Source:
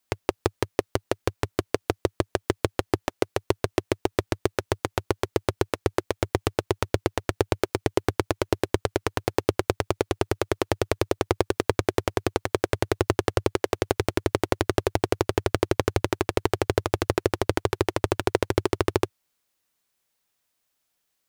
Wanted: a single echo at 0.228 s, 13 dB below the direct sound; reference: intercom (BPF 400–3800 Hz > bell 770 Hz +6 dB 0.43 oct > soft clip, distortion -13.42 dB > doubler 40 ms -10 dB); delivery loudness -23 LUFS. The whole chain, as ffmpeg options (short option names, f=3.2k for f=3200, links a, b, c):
-filter_complex "[0:a]highpass=400,lowpass=3.8k,equalizer=f=770:t=o:w=0.43:g=6,aecho=1:1:228:0.224,asoftclip=threshold=-12dB,asplit=2[a][b];[b]adelay=40,volume=-10dB[c];[a][c]amix=inputs=2:normalize=0,volume=8dB"